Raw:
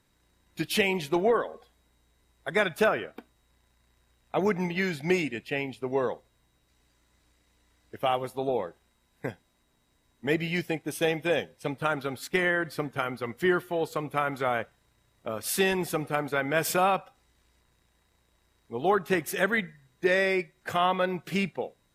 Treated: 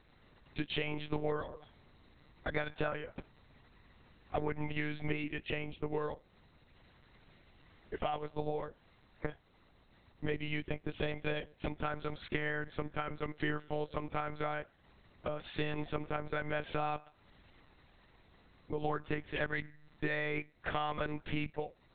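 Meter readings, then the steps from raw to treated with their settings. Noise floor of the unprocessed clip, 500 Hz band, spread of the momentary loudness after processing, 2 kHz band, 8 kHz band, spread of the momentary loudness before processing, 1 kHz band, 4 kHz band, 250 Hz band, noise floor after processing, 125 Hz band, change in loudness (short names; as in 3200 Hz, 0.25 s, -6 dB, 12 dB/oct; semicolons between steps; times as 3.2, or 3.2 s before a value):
-70 dBFS, -11.0 dB, 7 LU, -10.0 dB, under -40 dB, 12 LU, -10.0 dB, -9.5 dB, -9.5 dB, -66 dBFS, -5.0 dB, -10.5 dB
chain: compressor 4:1, threshold -41 dBFS, peak gain reduction 18 dB; monotone LPC vocoder at 8 kHz 150 Hz; gain +5.5 dB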